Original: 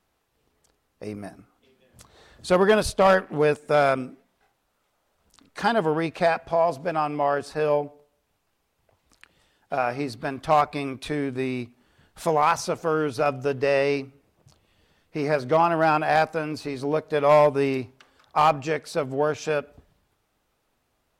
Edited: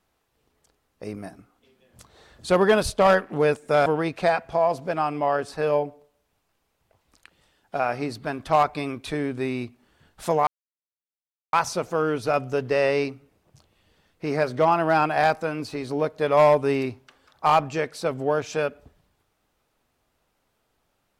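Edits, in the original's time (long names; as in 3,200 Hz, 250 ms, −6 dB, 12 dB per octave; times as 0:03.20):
0:03.86–0:05.84: remove
0:12.45: splice in silence 1.06 s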